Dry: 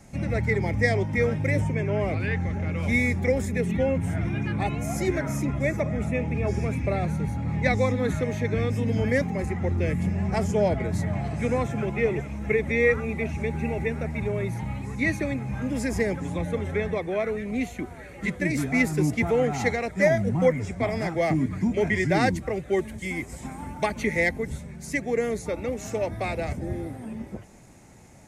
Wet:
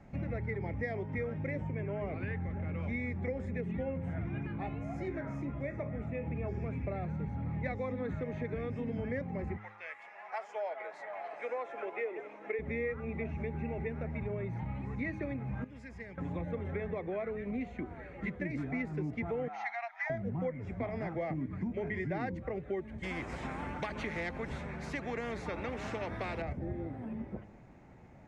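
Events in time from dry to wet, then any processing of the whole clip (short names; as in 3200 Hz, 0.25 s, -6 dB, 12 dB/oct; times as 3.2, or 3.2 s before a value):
4.47–6.27 resonator 56 Hz, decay 0.26 s, mix 70%
9.56–12.58 HPF 1000 Hz -> 330 Hz 24 dB/oct
15.64–16.18 passive tone stack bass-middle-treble 5-5-5
19.48–20.1 brick-wall FIR band-pass 650–6700 Hz
23.03–26.42 spectral compressor 2:1
whole clip: LPF 2100 Hz 12 dB/oct; de-hum 105.1 Hz, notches 5; compressor 4:1, threshold -30 dBFS; gain -4 dB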